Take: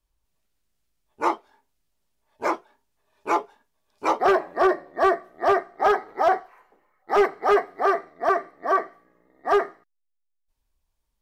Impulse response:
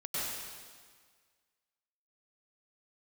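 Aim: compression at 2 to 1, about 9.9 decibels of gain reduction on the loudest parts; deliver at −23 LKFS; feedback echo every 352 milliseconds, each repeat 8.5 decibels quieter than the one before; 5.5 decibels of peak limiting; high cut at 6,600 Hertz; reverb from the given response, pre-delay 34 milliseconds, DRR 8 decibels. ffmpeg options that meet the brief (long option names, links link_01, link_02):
-filter_complex "[0:a]lowpass=6600,acompressor=threshold=-33dB:ratio=2,alimiter=limit=-22.5dB:level=0:latency=1,aecho=1:1:352|704|1056|1408:0.376|0.143|0.0543|0.0206,asplit=2[link_01][link_02];[1:a]atrim=start_sample=2205,adelay=34[link_03];[link_02][link_03]afir=irnorm=-1:irlink=0,volume=-13dB[link_04];[link_01][link_04]amix=inputs=2:normalize=0,volume=11dB"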